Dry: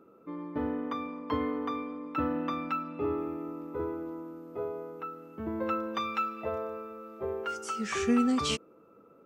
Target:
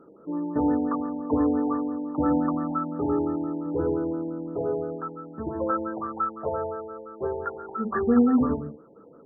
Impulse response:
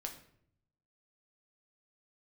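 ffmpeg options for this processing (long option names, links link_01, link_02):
-filter_complex "[0:a]asettb=1/sr,asplit=3[link_01][link_02][link_03];[link_01]atrim=end=3.664[link_04];[link_02]atrim=start=3.66:end=4.96,asetpts=PTS-STARTPTS,afade=type=in:duration=0.004:curve=qsin,afade=type=out:start_time=1.296:duration=0.004:curve=qsin,tiltshelf=frequency=1200:gain=4.5[link_05];[link_03]atrim=start=4.956[link_06];[link_04][link_05]acrossfade=duration=0.004:curve1=hsin:curve2=qsin[link_07];[link_07][link_06]acrossfade=duration=0.004:curve1=qsin:curve2=hsin[link_08];[1:a]atrim=start_sample=2205,afade=type=out:start_time=0.25:duration=0.01,atrim=end_sample=11466,asetrate=42336,aresample=44100[link_09];[link_08][link_09]afir=irnorm=-1:irlink=0,afftfilt=real='re*lt(b*sr/1024,890*pow(1900/890,0.5+0.5*sin(2*PI*5.8*pts/sr)))':imag='im*lt(b*sr/1024,890*pow(1900/890,0.5+0.5*sin(2*PI*5.8*pts/sr)))':win_size=1024:overlap=0.75,volume=9dB"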